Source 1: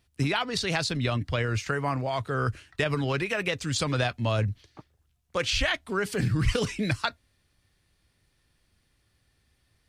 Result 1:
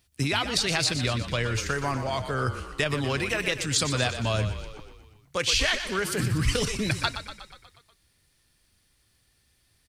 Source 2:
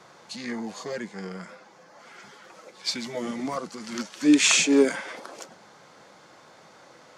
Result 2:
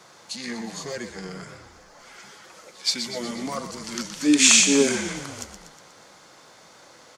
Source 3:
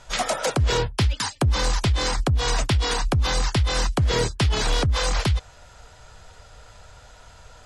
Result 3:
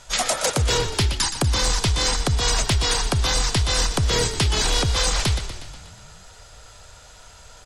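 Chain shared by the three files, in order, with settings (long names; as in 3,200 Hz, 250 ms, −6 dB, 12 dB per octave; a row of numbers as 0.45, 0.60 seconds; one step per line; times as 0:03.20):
high-shelf EQ 3,800 Hz +10 dB
echo with shifted repeats 121 ms, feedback 60%, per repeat −35 Hz, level −10 dB
level −1 dB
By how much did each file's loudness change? +1.5, +3.5, +2.0 LU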